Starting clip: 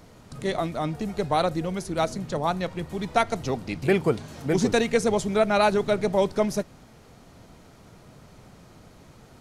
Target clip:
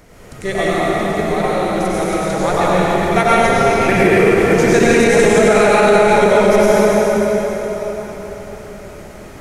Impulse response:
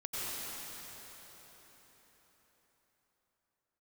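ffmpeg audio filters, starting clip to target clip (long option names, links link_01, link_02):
-filter_complex "[0:a]equalizer=frequency=125:width_type=o:width=1:gain=-7,equalizer=frequency=250:width_type=o:width=1:gain=-4,equalizer=frequency=1000:width_type=o:width=1:gain=-5,equalizer=frequency=2000:width_type=o:width=1:gain=4,equalizer=frequency=4000:width_type=o:width=1:gain=-7,asettb=1/sr,asplit=3[link_01][link_02][link_03];[link_01]atrim=end=0.734[link_04];[link_02]atrim=start=0.73:end=2.23,asetpts=PTS-STARTPTS,afade=type=in:duration=0.004:curve=qsin,afade=type=out:start_time=1.496:duration=0.004:curve=qsin,acompressor=threshold=-35dB:ratio=2[link_05];[link_03]atrim=start=2.226[link_06];[link_04][link_05]acrossfade=duration=0.004:curve1=hsin:curve2=qsin[link_07];[link_07][link_06]acrossfade=duration=0.004:curve1=qsin:curve2=hsin[link_08];[1:a]atrim=start_sample=2205[link_09];[link_08][link_09]afir=irnorm=-1:irlink=0,alimiter=level_in=13.5dB:limit=-1dB:release=50:level=0:latency=1,volume=-1dB"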